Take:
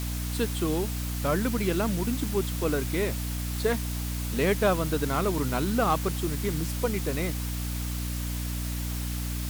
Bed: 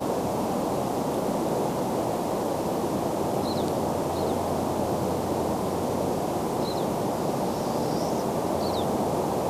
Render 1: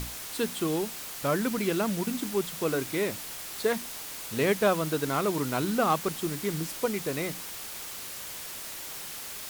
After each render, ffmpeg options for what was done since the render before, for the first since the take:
-af "bandreject=f=60:t=h:w=6,bandreject=f=120:t=h:w=6,bandreject=f=180:t=h:w=6,bandreject=f=240:t=h:w=6,bandreject=f=300:t=h:w=6"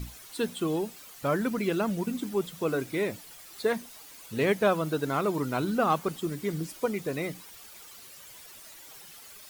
-af "afftdn=nr=12:nf=-40"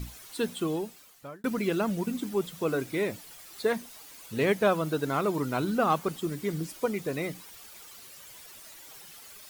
-filter_complex "[0:a]asplit=2[s0][s1];[s0]atrim=end=1.44,asetpts=PTS-STARTPTS,afade=t=out:st=0.59:d=0.85[s2];[s1]atrim=start=1.44,asetpts=PTS-STARTPTS,afade=t=in:d=0.004:c=hsin[s3];[s2][s3]concat=n=2:v=0:a=1"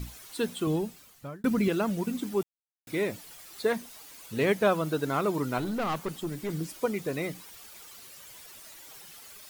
-filter_complex "[0:a]asettb=1/sr,asplit=3[s0][s1][s2];[s0]atrim=end=0.674[s3];[s1]atrim=start=0.67:end=1.68,asetpts=PTS-STARTPTS,afade=t=in:d=0.004:c=qsin,afade=t=out:st=1.006:d=0.004:c=qsin,bass=f=250:g=9,treble=f=4000:g=0[s4];[s2]atrim=start=1.676[s5];[s3][s4]acrossfade=d=0.004:c1=hsin:c2=qsin[s6];[s6][s5]acrossfade=d=0.004:c1=qsin:c2=hsin,asettb=1/sr,asplit=3[s7][s8][s9];[s7]atrim=end=5.584[s10];[s8]atrim=start=5.58:end=6.5,asetpts=PTS-STARTPTS,afade=t=in:d=0.004:c=qsin,afade=t=out:st=0.916:d=0.004:c=qsin,aeval=exprs='(tanh(20*val(0)+0.25)-tanh(0.25))/20':c=same[s11];[s9]atrim=start=6.496[s12];[s10][s11]acrossfade=d=0.004:c1=hsin:c2=qsin[s13];[s13][s12]acrossfade=d=0.004:c1=qsin:c2=hsin,asplit=3[s14][s15][s16];[s14]atrim=end=2.43,asetpts=PTS-STARTPTS,afade=t=out:st=2.426:d=0.004:c=hsin[s17];[s15]atrim=start=2.43:end=2.87,asetpts=PTS-STARTPTS,volume=0[s18];[s16]atrim=start=2.87,asetpts=PTS-STARTPTS,afade=t=in:d=0.004:c=hsin[s19];[s17][s18][s19]concat=n=3:v=0:a=1"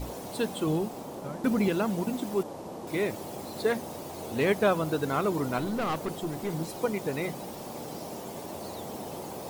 -filter_complex "[1:a]volume=0.224[s0];[0:a][s0]amix=inputs=2:normalize=0"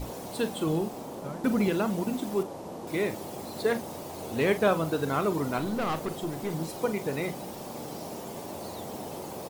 -filter_complex "[0:a]asplit=2[s0][s1];[s1]adelay=43,volume=0.251[s2];[s0][s2]amix=inputs=2:normalize=0"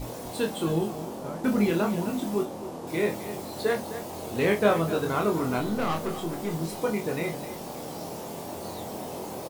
-filter_complex "[0:a]asplit=2[s0][s1];[s1]adelay=24,volume=0.668[s2];[s0][s2]amix=inputs=2:normalize=0,aecho=1:1:256:0.224"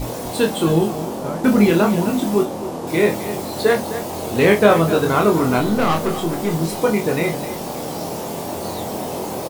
-af "volume=3.16,alimiter=limit=0.891:level=0:latency=1"

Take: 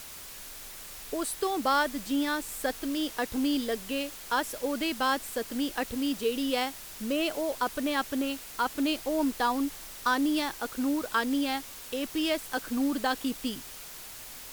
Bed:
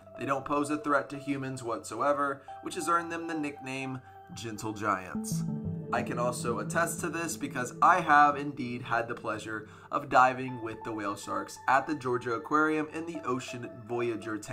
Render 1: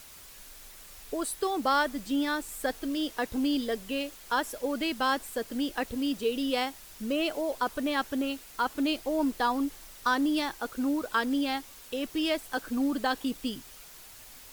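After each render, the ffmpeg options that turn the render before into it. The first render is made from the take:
-af "afftdn=nr=6:nf=-44"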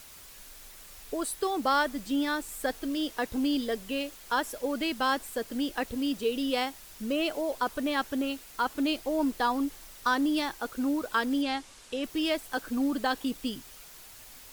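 -filter_complex "[0:a]asettb=1/sr,asplit=3[s0][s1][s2];[s0]atrim=end=11.424[s3];[s1]atrim=start=11.42:end=12.04,asetpts=PTS-STARTPTS,afade=t=in:d=0.004:c=qsin,afade=t=out:st=0.616:d=0.004:c=qsin,lowpass=f=9700:w=0.5412,lowpass=f=9700:w=1.3066[s4];[s2]atrim=start=12.036[s5];[s3][s4]acrossfade=d=0.004:c1=hsin:c2=qsin[s6];[s6][s5]acrossfade=d=0.004:c1=qsin:c2=hsin"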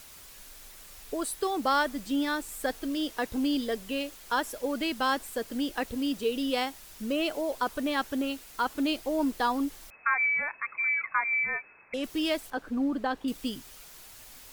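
-filter_complex "[0:a]asettb=1/sr,asplit=3[s0][s1][s2];[s0]atrim=end=9.904[s3];[s1]atrim=start=9.9:end=11.94,asetpts=PTS-STARTPTS,afade=t=in:d=0.004:c=qsin,afade=t=out:st=2.036:d=0.004:c=qsin,lowpass=f=2200:t=q:w=0.5098,lowpass=f=2200:t=q:w=0.6013,lowpass=f=2200:t=q:w=0.9,lowpass=f=2200:t=q:w=2.563,afreqshift=-2600[s4];[s2]atrim=start=11.936[s5];[s3][s4]acrossfade=d=0.004:c1=hsin:c2=qsin[s6];[s6][s5]acrossfade=d=0.004:c1=qsin:c2=hsin,asettb=1/sr,asplit=3[s7][s8][s9];[s7]atrim=end=12.504[s10];[s8]atrim=start=12.5:end=13.28,asetpts=PTS-STARTPTS,afade=t=in:d=0.004:c=qsin,afade=t=out:st=0.776:d=0.004:c=qsin,lowpass=f=1400:p=1[s11];[s9]atrim=start=13.276[s12];[s10][s11]acrossfade=d=0.004:c1=hsin:c2=qsin[s13];[s13][s12]acrossfade=d=0.004:c1=qsin:c2=hsin"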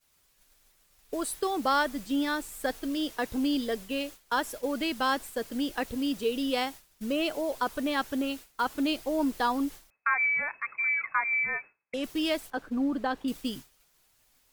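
-af "agate=range=0.0224:threshold=0.0141:ratio=3:detection=peak,equalizer=f=140:w=3.8:g=4"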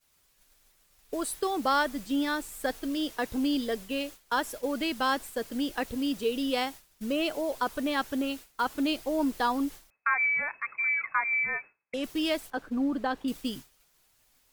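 -af anull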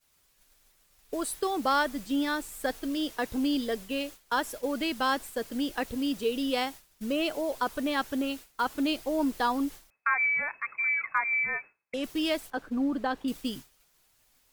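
-af "asoftclip=type=hard:threshold=0.178"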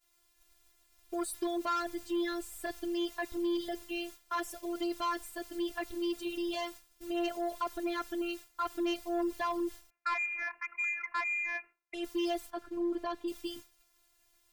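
-af "afftfilt=real='hypot(re,im)*cos(PI*b)':imag='0':win_size=512:overlap=0.75,asoftclip=type=tanh:threshold=0.0562"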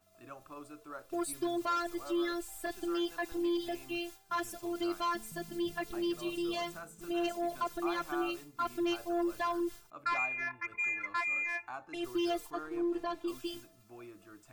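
-filter_complex "[1:a]volume=0.112[s0];[0:a][s0]amix=inputs=2:normalize=0"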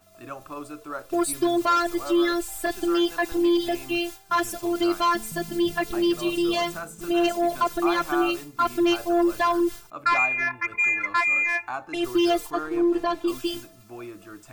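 -af "volume=3.76"

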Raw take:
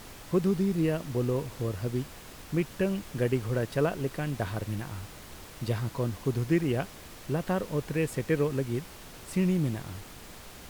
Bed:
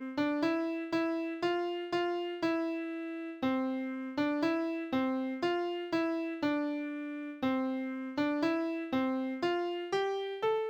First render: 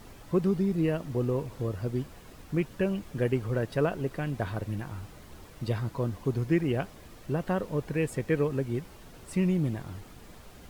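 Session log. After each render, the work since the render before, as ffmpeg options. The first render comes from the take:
-af "afftdn=nr=8:nf=-47"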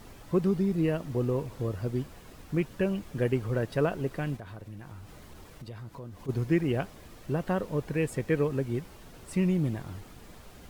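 -filter_complex "[0:a]asplit=3[s0][s1][s2];[s0]afade=t=out:st=4.36:d=0.02[s3];[s1]acompressor=threshold=0.00708:ratio=3:attack=3.2:release=140:knee=1:detection=peak,afade=t=in:st=4.36:d=0.02,afade=t=out:st=6.28:d=0.02[s4];[s2]afade=t=in:st=6.28:d=0.02[s5];[s3][s4][s5]amix=inputs=3:normalize=0"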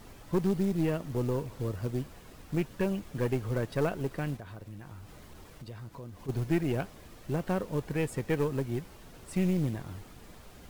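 -af "aeval=exprs='(tanh(8.91*val(0)+0.4)-tanh(0.4))/8.91':c=same,acrusher=bits=6:mode=log:mix=0:aa=0.000001"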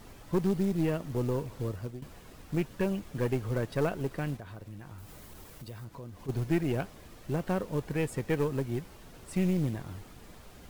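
-filter_complex "[0:a]asettb=1/sr,asplit=3[s0][s1][s2];[s0]atrim=end=4.984[s3];[s1]atrim=start=4.98:end=5.85,asetpts=PTS-STARTPTS,afade=t=in:d=0.004:c=qsin,afade=t=out:st=0.866:d=0.004:c=qsin,highshelf=f=8800:g=11[s4];[s2]atrim=start=5.846[s5];[s3][s4]acrossfade=d=0.004:c1=hsin:c2=qsin[s6];[s6][s5]acrossfade=d=0.004:c1=qsin:c2=hsin,asplit=2[s7][s8];[s7]atrim=end=2.02,asetpts=PTS-STARTPTS,afade=t=out:st=1.55:d=0.47:c=qsin:silence=0.158489[s9];[s8]atrim=start=2.02,asetpts=PTS-STARTPTS,afade=t=in:d=0.004:c=hsin:silence=0.158489[s10];[s9][s10]concat=n=2:v=0:a=1"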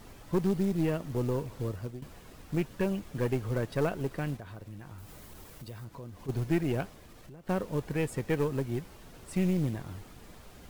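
-filter_complex "[0:a]asettb=1/sr,asplit=3[s0][s1][s2];[s0]atrim=end=6.894[s3];[s1]atrim=start=6.89:end=7.49,asetpts=PTS-STARTPTS,afade=t=in:d=0.004:c=qsin,afade=t=out:st=0.596:d=0.004:c=qsin,acompressor=threshold=0.00447:ratio=6:attack=3.2:release=140:knee=1:detection=peak[s4];[s2]atrim=start=7.486[s5];[s3][s4]acrossfade=d=0.004:c1=hsin:c2=qsin[s6];[s6][s5]acrossfade=d=0.004:c1=qsin:c2=hsin"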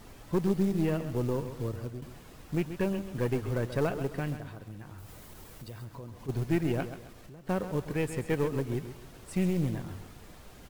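-af "aecho=1:1:133|266|399|532:0.282|0.0986|0.0345|0.0121"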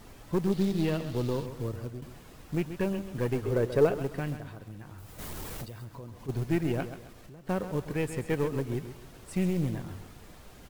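-filter_complex "[0:a]asettb=1/sr,asplit=3[s0][s1][s2];[s0]atrim=end=0.524[s3];[s1]atrim=start=0.52:end=1.46,asetpts=PTS-STARTPTS,afade=t=in:d=0.004:c=qsin,afade=t=out:st=0.936:d=0.004:c=qsin,equalizer=f=3900:w=1.6:g=10.5[s4];[s2]atrim=start=1.456[s5];[s3][s4]acrossfade=d=0.004:c1=hsin:c2=qsin[s6];[s6][s5]acrossfade=d=0.004:c1=qsin:c2=hsin,asettb=1/sr,asplit=3[s7][s8][s9];[s7]atrim=end=3.434[s10];[s8]atrim=start=3.43:end=3.95,asetpts=PTS-STARTPTS,afade=t=in:d=0.004:c=qsin,afade=t=out:st=0.516:d=0.004:c=qsin,equalizer=f=430:w=2.1:g=9.5[s11];[s9]atrim=start=3.946[s12];[s10][s11]acrossfade=d=0.004:c1=hsin:c2=qsin[s13];[s13][s12]acrossfade=d=0.004:c1=qsin:c2=hsin,asplit=3[s14][s15][s16];[s14]afade=t=out:st=5.18:d=0.02[s17];[s15]aeval=exprs='0.02*sin(PI/2*2.51*val(0)/0.02)':c=same,afade=t=in:st=5.18:d=0.02,afade=t=out:st=5.64:d=0.02[s18];[s16]afade=t=in:st=5.64:d=0.02[s19];[s17][s18][s19]amix=inputs=3:normalize=0"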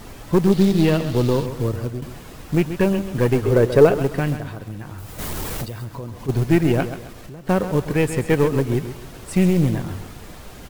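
-af "volume=3.76,alimiter=limit=0.794:level=0:latency=1"

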